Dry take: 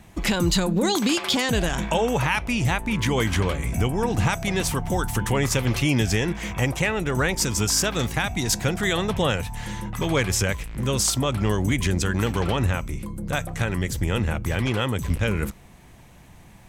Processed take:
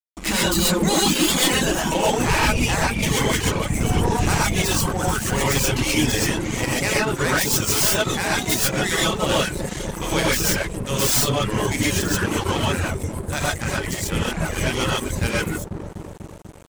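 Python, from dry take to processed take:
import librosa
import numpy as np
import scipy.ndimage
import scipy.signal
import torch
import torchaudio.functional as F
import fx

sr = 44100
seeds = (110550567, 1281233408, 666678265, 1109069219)

y = fx.tracing_dist(x, sr, depth_ms=0.17)
y = fx.dmg_wind(y, sr, seeds[0], corner_hz=99.0, level_db=-24.0, at=(2.04, 4.28), fade=0.02)
y = fx.echo_wet_lowpass(y, sr, ms=246, feedback_pct=76, hz=450.0, wet_db=-4.5)
y = fx.rev_gated(y, sr, seeds[1], gate_ms=160, shape='rising', drr_db=-6.0)
y = fx.dereverb_blind(y, sr, rt60_s=0.7)
y = np.sign(y) * np.maximum(np.abs(y) - 10.0 ** (-30.0 / 20.0), 0.0)
y = fx.low_shelf(y, sr, hz=440.0, db=-6.0)
y = np.clip(y, -10.0 ** (-12.5 / 20.0), 10.0 ** (-12.5 / 20.0))
y = fx.peak_eq(y, sr, hz=7800.0, db=6.5, octaves=1.1)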